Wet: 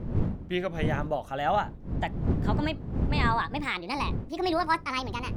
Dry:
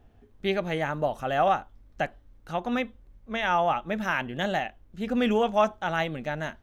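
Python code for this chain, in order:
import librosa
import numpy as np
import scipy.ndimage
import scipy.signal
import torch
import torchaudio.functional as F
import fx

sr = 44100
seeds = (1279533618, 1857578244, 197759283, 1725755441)

y = fx.speed_glide(x, sr, from_pct=84, to_pct=163)
y = fx.dmg_wind(y, sr, seeds[0], corner_hz=170.0, level_db=-28.0)
y = y * librosa.db_to_amplitude(-3.0)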